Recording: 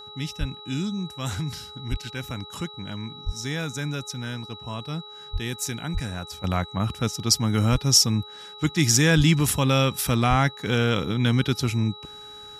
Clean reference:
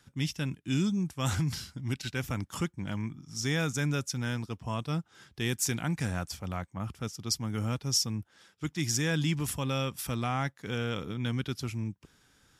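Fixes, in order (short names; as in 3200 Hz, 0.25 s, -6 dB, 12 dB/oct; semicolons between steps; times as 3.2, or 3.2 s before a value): de-hum 420 Hz, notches 3; notch 3900 Hz, Q 30; de-plosive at 0.39/1.9/3.25/5.32/5.93/7.71/9.16/10.29; gain correction -10.5 dB, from 6.44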